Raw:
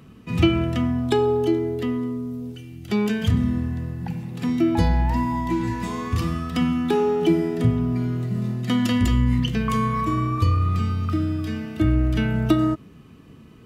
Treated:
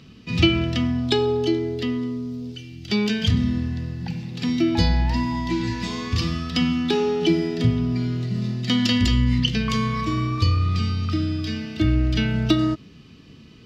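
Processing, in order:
drawn EQ curve 250 Hz 0 dB, 1,100 Hz −4 dB, 4,900 Hz +13 dB, 9,700 Hz −9 dB

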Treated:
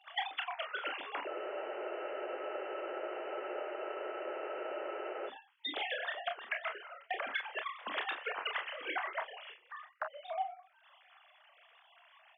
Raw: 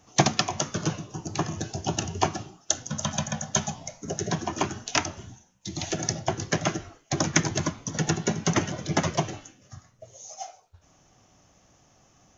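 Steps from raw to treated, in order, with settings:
three sine waves on the formant tracks
high-pass filter 1,100 Hz 12 dB per octave
noise gate −59 dBFS, range −11 dB
downward compressor 10 to 1, threshold −43 dBFS, peak gain reduction 23.5 dB
on a send: ambience of single reflections 29 ms −6.5 dB, 43 ms −10.5 dB
on the sum: frozen spectrum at 0:01.31, 3.98 s
one half of a high-frequency compander encoder only
level +7.5 dB

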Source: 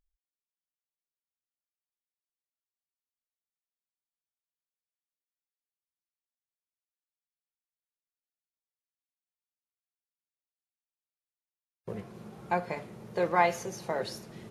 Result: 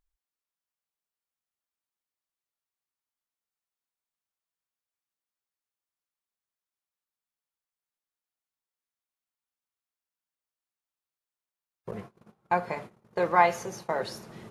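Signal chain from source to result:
0:11.91–0:14.07: noise gate −43 dBFS, range −26 dB
parametric band 1,100 Hz +5.5 dB 1.4 octaves

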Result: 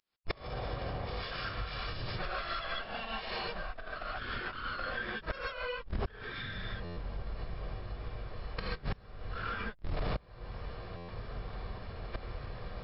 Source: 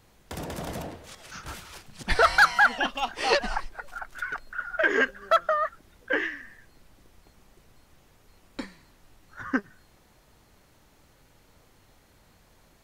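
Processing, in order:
lower of the sound and its delayed copy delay 1.4 ms
camcorder AGC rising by 69 dB per second
slack as between gear wheels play −26 dBFS
phase-vocoder pitch shift with formants kept −3.5 semitones
reverb whose tail is shaped and stops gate 170 ms rising, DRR −7.5 dB
gate with flip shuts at −17 dBFS, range −35 dB
soft clipping −25.5 dBFS, distortion −12 dB
downward compressor 6 to 1, threshold −50 dBFS, peak gain reduction 19.5 dB
buffer that repeats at 0:06.84/0:10.96, samples 512, times 10
level +17.5 dB
MP3 64 kbit/s 12,000 Hz

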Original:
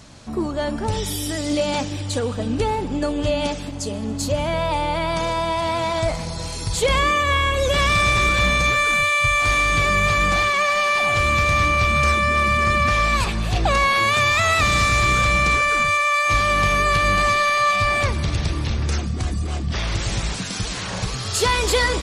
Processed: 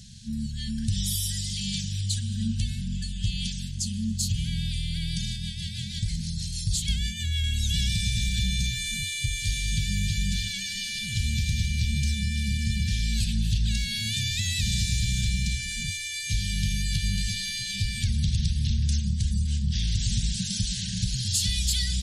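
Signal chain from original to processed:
0:05.36–0:07.44: rotating-speaker cabinet horn 6.3 Hz
brick-wall band-stop 230–1,500 Hz
dynamic equaliser 940 Hz, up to −8 dB, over −40 dBFS, Q 0.7
downward compressor 4 to 1, threshold −20 dBFS, peak gain reduction 4 dB
flat-topped bell 1,500 Hz −13.5 dB

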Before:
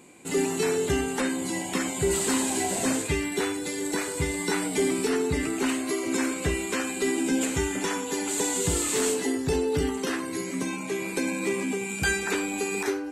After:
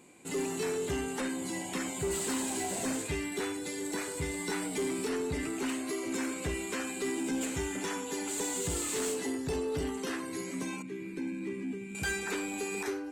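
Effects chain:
0:10.82–0:11.95: drawn EQ curve 330 Hz 0 dB, 670 Hz −22 dB, 1,800 Hz −7 dB, 7,400 Hz −18 dB
soft clipping −21 dBFS, distortion −17 dB
level −5.5 dB

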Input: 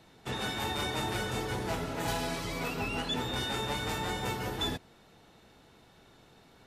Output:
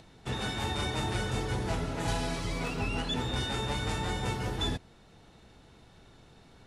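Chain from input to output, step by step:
elliptic low-pass filter 11,000 Hz, stop band 40 dB
low-shelf EQ 130 Hz +10.5 dB
upward compression, threshold −52 dBFS

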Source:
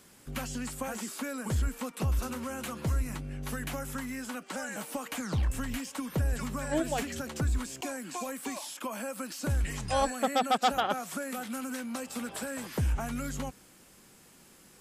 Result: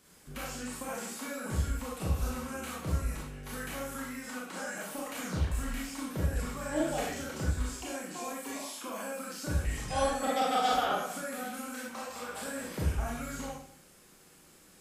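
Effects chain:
0:11.88–0:12.36: graphic EQ with 15 bands 250 Hz −10 dB, 1,000 Hz +8 dB, 10,000 Hz −7 dB
convolution reverb RT60 0.55 s, pre-delay 24 ms, DRR −5 dB
level −7 dB

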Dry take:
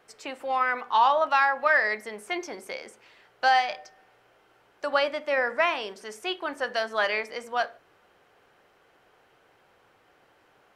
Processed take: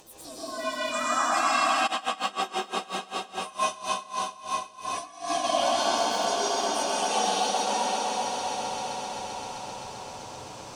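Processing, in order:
partials spread apart or drawn together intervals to 126%
graphic EQ with 10 bands 125 Hz +6 dB, 250 Hz +3 dB, 2,000 Hz −12 dB, 8,000 Hz +11 dB
upward compression, threshold −33 dBFS
flanger 0.44 Hz, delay 2.5 ms, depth 7.5 ms, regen +41%
echo that builds up and dies away 130 ms, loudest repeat 5, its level −12 dB
convolution reverb RT60 4.7 s, pre-delay 103 ms, DRR −11.5 dB
0:01.86–0:05.43: tremolo with a sine in dB 7.2 Hz → 2.1 Hz, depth 22 dB
level −2.5 dB

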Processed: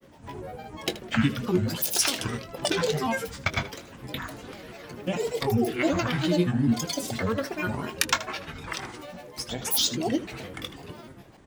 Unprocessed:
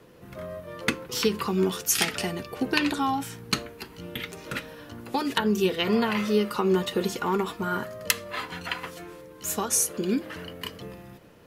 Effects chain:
dynamic equaliser 920 Hz, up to −5 dB, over −43 dBFS, Q 1.1
granular cloud, pitch spread up and down by 12 semitones
ambience of single reflections 22 ms −12.5 dB, 79 ms −15 dB
level +1.5 dB

